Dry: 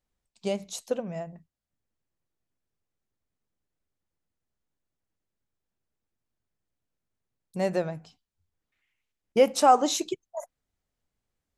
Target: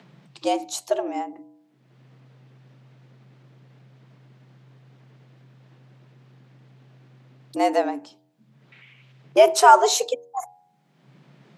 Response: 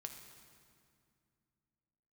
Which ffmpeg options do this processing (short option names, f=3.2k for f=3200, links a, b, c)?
-filter_complex "[0:a]bandreject=f=86.11:t=h:w=4,bandreject=f=172.22:t=h:w=4,bandreject=f=258.33:t=h:w=4,bandreject=f=344.44:t=h:w=4,bandreject=f=430.55:t=h:w=4,bandreject=f=516.66:t=h:w=4,bandreject=f=602.77:t=h:w=4,bandreject=f=688.88:t=h:w=4,bandreject=f=774.99:t=h:w=4,bandreject=f=861.1:t=h:w=4,acrossover=split=4200[a][b];[a]acompressor=mode=upward:threshold=-39dB:ratio=2.5[c];[c][b]amix=inputs=2:normalize=0,afreqshift=130,volume=6.5dB"